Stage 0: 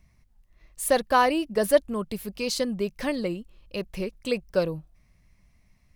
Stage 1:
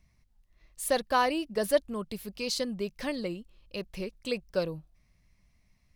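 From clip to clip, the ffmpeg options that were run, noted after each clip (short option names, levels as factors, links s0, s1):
-af "equalizer=f=4300:w=1:g=4,volume=0.531"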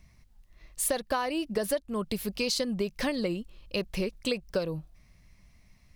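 -af "acompressor=threshold=0.0224:ratio=16,volume=2.51"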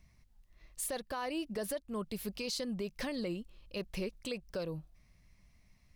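-af "alimiter=limit=0.0794:level=0:latency=1:release=17,volume=0.501"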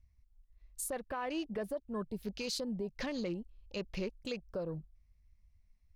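-af "afwtdn=0.00355"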